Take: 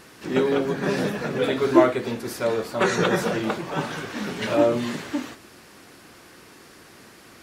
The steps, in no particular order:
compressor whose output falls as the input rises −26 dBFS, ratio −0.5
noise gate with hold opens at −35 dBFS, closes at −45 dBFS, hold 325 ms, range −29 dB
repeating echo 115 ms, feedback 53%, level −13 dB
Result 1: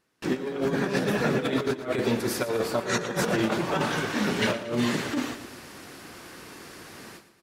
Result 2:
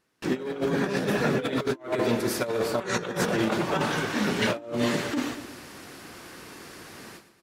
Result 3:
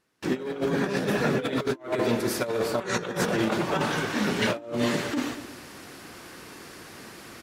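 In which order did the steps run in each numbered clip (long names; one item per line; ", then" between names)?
noise gate with hold, then compressor whose output falls as the input rises, then repeating echo
noise gate with hold, then repeating echo, then compressor whose output falls as the input rises
repeating echo, then noise gate with hold, then compressor whose output falls as the input rises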